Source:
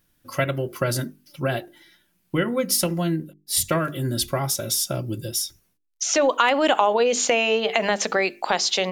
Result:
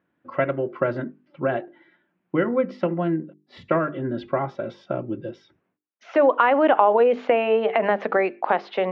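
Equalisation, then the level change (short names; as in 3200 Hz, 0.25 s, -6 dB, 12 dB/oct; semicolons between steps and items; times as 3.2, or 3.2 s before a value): HPF 230 Hz 12 dB/oct; Bessel low-pass 1500 Hz, order 4; air absorption 96 m; +3.5 dB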